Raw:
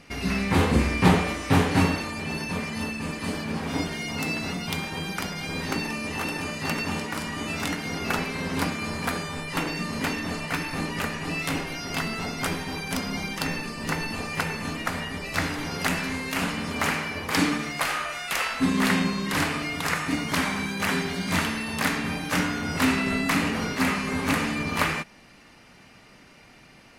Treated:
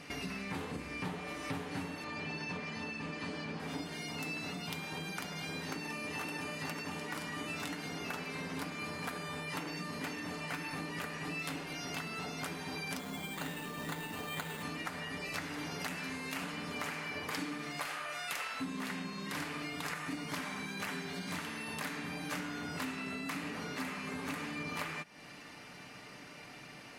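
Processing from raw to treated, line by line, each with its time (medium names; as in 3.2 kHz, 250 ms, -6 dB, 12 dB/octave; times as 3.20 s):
2.04–3.60 s: low-pass 5.4 kHz
12.99–14.63 s: careless resampling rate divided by 8×, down filtered, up hold
whole clip: compression 6:1, threshold -39 dBFS; high-pass 140 Hz 6 dB/octave; comb 6.8 ms, depth 33%; trim +1 dB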